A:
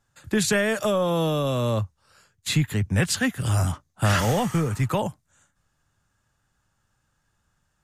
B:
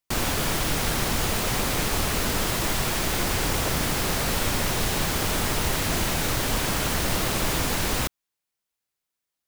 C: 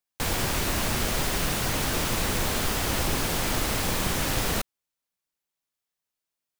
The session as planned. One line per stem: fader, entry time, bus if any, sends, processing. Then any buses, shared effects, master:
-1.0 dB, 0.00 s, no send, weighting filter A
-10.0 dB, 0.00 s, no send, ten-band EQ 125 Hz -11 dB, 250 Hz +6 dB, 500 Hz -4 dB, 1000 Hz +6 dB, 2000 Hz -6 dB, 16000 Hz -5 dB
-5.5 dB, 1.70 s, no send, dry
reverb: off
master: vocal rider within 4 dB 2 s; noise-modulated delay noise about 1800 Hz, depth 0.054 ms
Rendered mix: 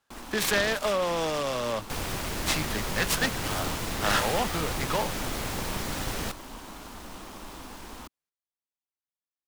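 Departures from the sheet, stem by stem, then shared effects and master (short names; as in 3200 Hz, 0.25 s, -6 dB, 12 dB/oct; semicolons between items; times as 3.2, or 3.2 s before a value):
stem B -10.0 dB -> -16.5 dB; master: missing vocal rider within 4 dB 2 s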